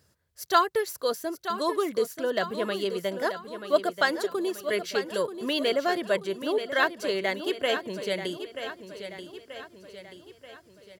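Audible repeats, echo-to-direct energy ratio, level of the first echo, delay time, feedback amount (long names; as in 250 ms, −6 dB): 5, −9.0 dB, −10.0 dB, 933 ms, 50%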